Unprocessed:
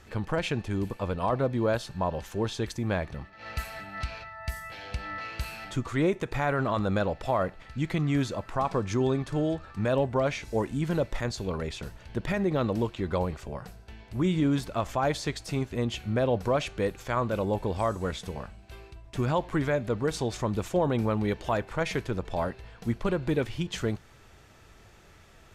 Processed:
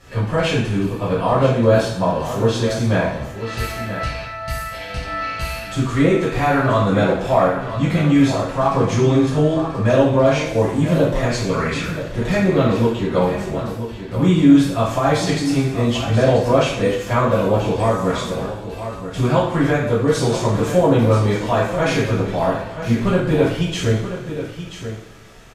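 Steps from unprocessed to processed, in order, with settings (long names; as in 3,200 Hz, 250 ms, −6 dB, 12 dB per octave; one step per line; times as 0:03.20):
0:11.38–0:11.99: flat-topped bell 1,700 Hz +9.5 dB 1.3 octaves
single-tap delay 982 ms −10.5 dB
coupled-rooms reverb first 0.61 s, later 2.1 s, from −18 dB, DRR −10 dB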